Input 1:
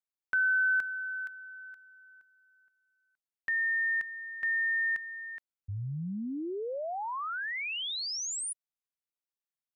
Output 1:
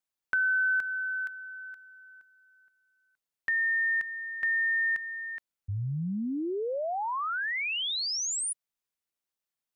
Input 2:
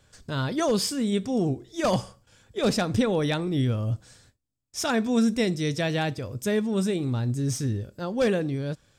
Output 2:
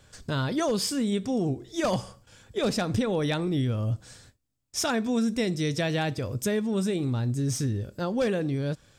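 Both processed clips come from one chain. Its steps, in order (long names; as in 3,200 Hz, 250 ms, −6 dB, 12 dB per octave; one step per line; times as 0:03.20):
downward compressor 2.5 to 1, threshold −30 dBFS
level +4 dB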